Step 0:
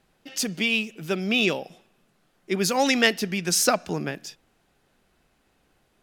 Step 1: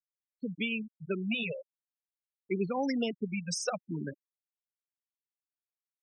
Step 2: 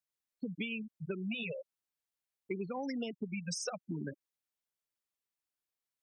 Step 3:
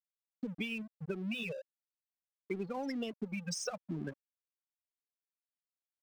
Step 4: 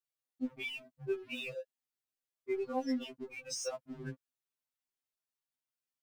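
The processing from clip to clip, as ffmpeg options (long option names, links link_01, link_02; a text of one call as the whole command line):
ffmpeg -i in.wav -filter_complex "[0:a]afftfilt=real='re*gte(hypot(re,im),0.141)':imag='im*gte(hypot(re,im),0.141)':win_size=1024:overlap=0.75,acrossover=split=400[link_01][link_02];[link_02]acompressor=threshold=-26dB:ratio=10[link_03];[link_01][link_03]amix=inputs=2:normalize=0,afftfilt=real='re*(1-between(b*sr/1024,280*pow(6400/280,0.5+0.5*sin(2*PI*0.48*pts/sr))/1.41,280*pow(6400/280,0.5+0.5*sin(2*PI*0.48*pts/sr))*1.41))':imag='im*(1-between(b*sr/1024,280*pow(6400/280,0.5+0.5*sin(2*PI*0.48*pts/sr))/1.41,280*pow(6400/280,0.5+0.5*sin(2*PI*0.48*pts/sr))*1.41))':win_size=1024:overlap=0.75,volume=-5.5dB" out.wav
ffmpeg -i in.wav -af "acompressor=threshold=-38dB:ratio=6,volume=2.5dB" out.wav
ffmpeg -i in.wav -af "aeval=exprs='sgn(val(0))*max(abs(val(0))-0.00188,0)':channel_layout=same,volume=1dB" out.wav
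ffmpeg -i in.wav -af "afftfilt=real='re*2.45*eq(mod(b,6),0)':imag='im*2.45*eq(mod(b,6),0)':win_size=2048:overlap=0.75,volume=2.5dB" out.wav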